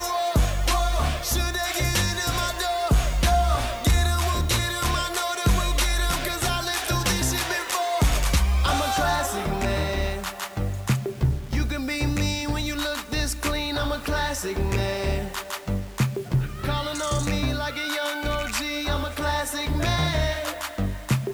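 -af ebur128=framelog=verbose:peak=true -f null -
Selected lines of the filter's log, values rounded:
Integrated loudness:
  I:         -24.9 LUFS
  Threshold: -34.9 LUFS
Loudness range:
  LRA:         3.6 LU
  Threshold: -44.9 LUFS
  LRA low:   -26.8 LUFS
  LRA high:  -23.1 LUFS
True peak:
  Peak:      -11.6 dBFS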